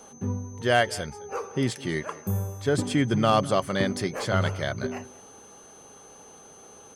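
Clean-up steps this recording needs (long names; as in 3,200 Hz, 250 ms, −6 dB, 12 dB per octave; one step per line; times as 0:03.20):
clipped peaks rebuilt −10.5 dBFS
notch filter 6,200 Hz, Q 30
echo removal 209 ms −20.5 dB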